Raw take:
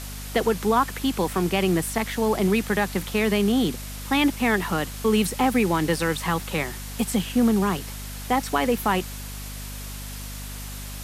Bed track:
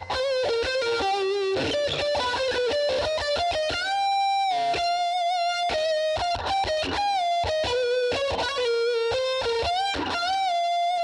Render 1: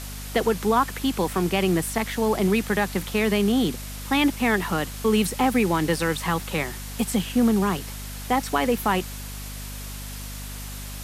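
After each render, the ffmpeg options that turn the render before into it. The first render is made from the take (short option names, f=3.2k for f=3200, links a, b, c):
-af anull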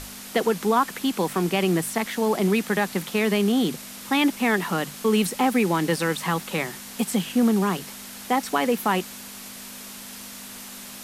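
-af "bandreject=f=50:t=h:w=6,bandreject=f=100:t=h:w=6,bandreject=f=150:t=h:w=6"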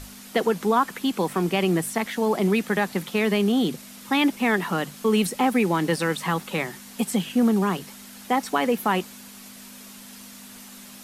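-af "afftdn=nr=6:nf=-40"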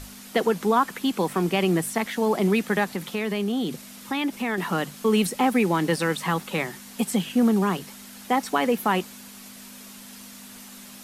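-filter_complex "[0:a]asettb=1/sr,asplit=3[a][b][c];[a]atrim=end=2.844[d];[b]atrim=start=2.84:end=4.58,asetpts=PTS-STARTPTS,afade=t=in:d=0.004:c=qsin,afade=t=out:st=1.736:d=0.004:c=qsin,acompressor=threshold=-26dB:ratio=2:attack=3.2:release=140:knee=1:detection=peak[e];[c]atrim=start=4.576[f];[d][e]acrossfade=d=0.004:c1=hsin:c2=qsin[g];[g][f]acrossfade=d=0.004:c1=qsin:c2=hsin"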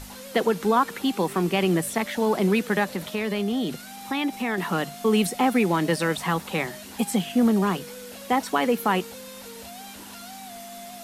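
-filter_complex "[1:a]volume=-18.5dB[a];[0:a][a]amix=inputs=2:normalize=0"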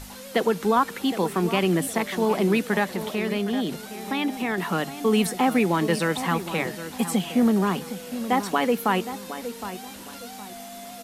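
-filter_complex "[0:a]asplit=2[a][b];[b]adelay=764,lowpass=f=2.4k:p=1,volume=-11.5dB,asplit=2[c][d];[d]adelay=764,lowpass=f=2.4k:p=1,volume=0.32,asplit=2[e][f];[f]adelay=764,lowpass=f=2.4k:p=1,volume=0.32[g];[a][c][e][g]amix=inputs=4:normalize=0"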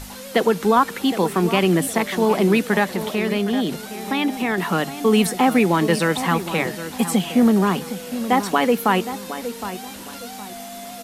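-af "volume=4.5dB"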